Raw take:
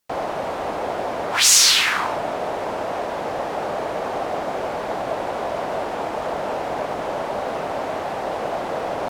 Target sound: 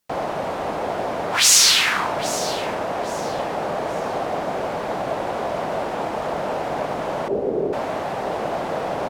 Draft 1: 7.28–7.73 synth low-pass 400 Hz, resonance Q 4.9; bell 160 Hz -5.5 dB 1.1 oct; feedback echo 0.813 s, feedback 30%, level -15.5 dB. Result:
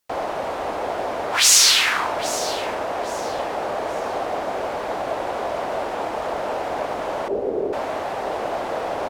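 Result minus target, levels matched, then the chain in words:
125 Hz band -7.0 dB
7.28–7.73 synth low-pass 400 Hz, resonance Q 4.9; bell 160 Hz +4.5 dB 1.1 oct; feedback echo 0.813 s, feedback 30%, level -15.5 dB

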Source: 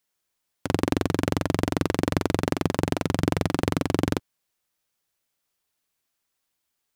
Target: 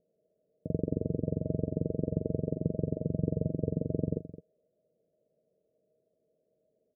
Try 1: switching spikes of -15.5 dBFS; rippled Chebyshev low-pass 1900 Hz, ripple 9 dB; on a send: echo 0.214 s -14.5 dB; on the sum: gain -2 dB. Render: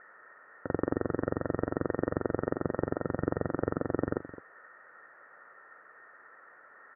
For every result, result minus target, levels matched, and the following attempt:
switching spikes: distortion +7 dB; 500 Hz band +2.5 dB
switching spikes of -22.5 dBFS; rippled Chebyshev low-pass 1900 Hz, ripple 9 dB; on a send: echo 0.214 s -14.5 dB; on the sum: gain -2 dB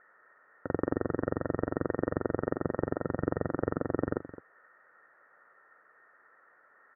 500 Hz band +2.5 dB
switching spikes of -22.5 dBFS; rippled Chebyshev low-pass 650 Hz, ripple 9 dB; on a send: echo 0.214 s -14.5 dB; on the sum: gain -2 dB

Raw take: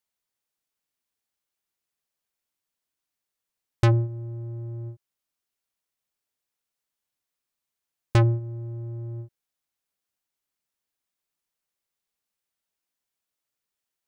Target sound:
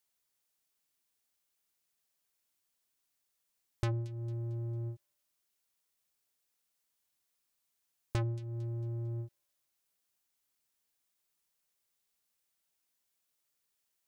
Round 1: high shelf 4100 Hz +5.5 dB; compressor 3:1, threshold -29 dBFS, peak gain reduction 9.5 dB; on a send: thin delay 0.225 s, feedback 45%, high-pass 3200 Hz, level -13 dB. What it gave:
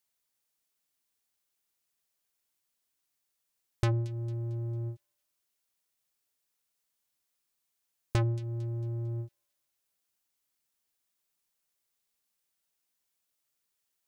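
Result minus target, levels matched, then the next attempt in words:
compressor: peak gain reduction -5.5 dB
high shelf 4100 Hz +5.5 dB; compressor 3:1, threshold -37 dBFS, peak gain reduction 15 dB; on a send: thin delay 0.225 s, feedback 45%, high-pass 3200 Hz, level -13 dB

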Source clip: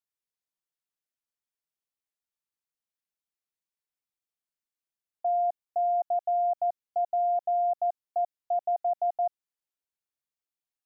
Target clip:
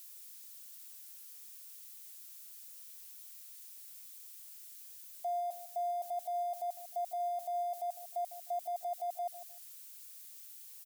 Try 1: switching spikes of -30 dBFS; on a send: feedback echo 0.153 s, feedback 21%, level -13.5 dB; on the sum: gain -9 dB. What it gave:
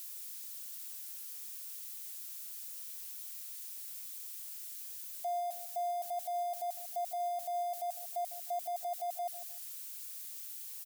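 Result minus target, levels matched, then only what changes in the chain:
switching spikes: distortion +6 dB
change: switching spikes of -36.5 dBFS

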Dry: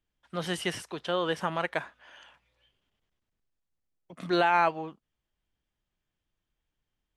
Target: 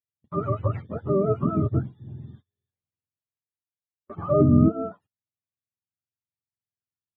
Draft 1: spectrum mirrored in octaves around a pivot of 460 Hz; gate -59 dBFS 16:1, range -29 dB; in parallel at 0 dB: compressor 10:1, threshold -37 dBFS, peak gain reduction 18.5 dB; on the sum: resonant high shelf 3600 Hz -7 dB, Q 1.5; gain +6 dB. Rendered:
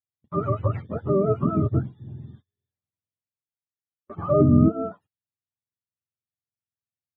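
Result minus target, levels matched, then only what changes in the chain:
compressor: peak gain reduction -7 dB
change: compressor 10:1, threshold -44.5 dBFS, peak gain reduction 25.5 dB

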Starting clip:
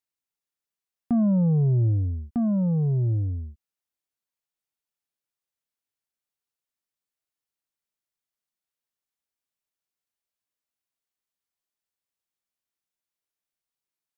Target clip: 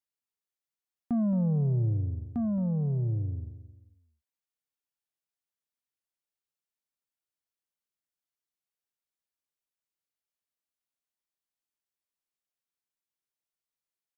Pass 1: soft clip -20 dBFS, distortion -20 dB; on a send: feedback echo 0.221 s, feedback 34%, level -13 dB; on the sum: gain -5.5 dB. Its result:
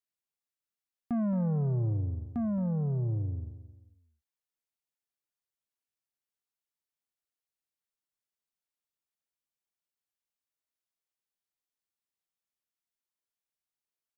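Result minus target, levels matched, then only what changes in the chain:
soft clip: distortion +19 dB
change: soft clip -9 dBFS, distortion -40 dB

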